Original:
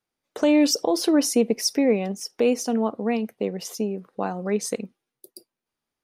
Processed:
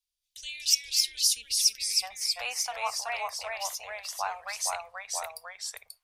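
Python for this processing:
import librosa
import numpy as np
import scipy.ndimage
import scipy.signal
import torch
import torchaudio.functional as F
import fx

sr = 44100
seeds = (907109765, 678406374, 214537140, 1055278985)

y = fx.cheby2_bandstop(x, sr, low_hz=160.0, high_hz=fx.steps((0.0, 1300.0), (2.02, 430.0)), order=4, stop_db=50)
y = fx.echo_pitch(y, sr, ms=217, semitones=-1, count=2, db_per_echo=-3.0)
y = y * 10.0 ** (1.0 / 20.0)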